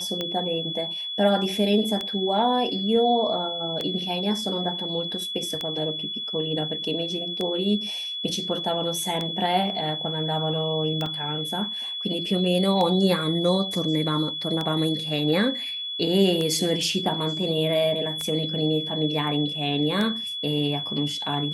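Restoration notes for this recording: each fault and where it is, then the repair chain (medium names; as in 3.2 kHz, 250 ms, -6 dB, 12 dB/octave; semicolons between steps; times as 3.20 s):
tick 33 1/3 rpm -14 dBFS
whine 3.4 kHz -29 dBFS
11.06 s: dropout 3 ms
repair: de-click; band-stop 3.4 kHz, Q 30; interpolate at 11.06 s, 3 ms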